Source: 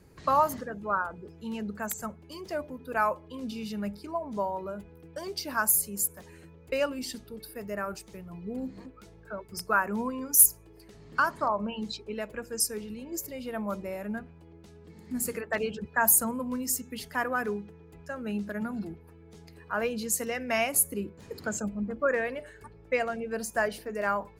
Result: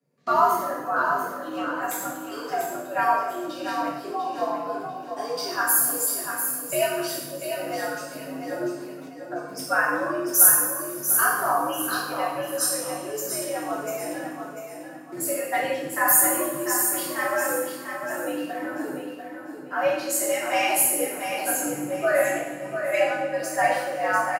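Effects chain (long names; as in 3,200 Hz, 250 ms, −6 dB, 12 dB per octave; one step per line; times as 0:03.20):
coupled-rooms reverb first 0.86 s, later 3.1 s, DRR −8.5 dB
noise gate with hold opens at −30 dBFS
on a send: repeating echo 694 ms, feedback 31%, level −7 dB
on the sum: frequency shifter +92 Hz
level −4 dB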